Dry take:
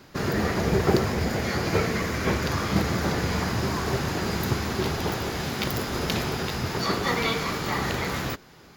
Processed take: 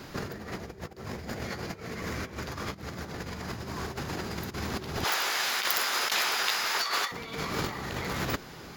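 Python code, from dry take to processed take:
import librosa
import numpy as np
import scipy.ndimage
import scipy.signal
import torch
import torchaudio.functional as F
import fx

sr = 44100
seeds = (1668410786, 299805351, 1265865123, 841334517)

y = fx.highpass(x, sr, hz=1100.0, slope=12, at=(5.04, 7.12))
y = fx.over_compress(y, sr, threshold_db=-32.0, ratio=-0.5)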